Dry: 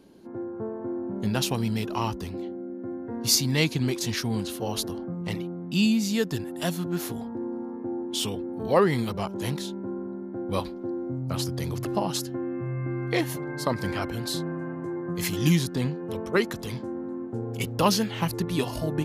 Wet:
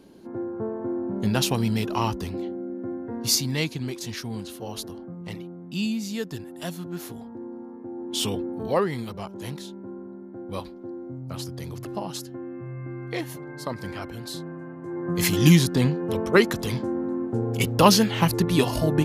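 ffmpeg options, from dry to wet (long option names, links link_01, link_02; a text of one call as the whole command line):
ffmpeg -i in.wav -af "volume=23dB,afade=type=out:start_time=2.78:duration=1:silence=0.398107,afade=type=in:start_time=7.94:duration=0.4:silence=0.354813,afade=type=out:start_time=8.34:duration=0.54:silence=0.354813,afade=type=in:start_time=14.82:duration=0.4:silence=0.281838" out.wav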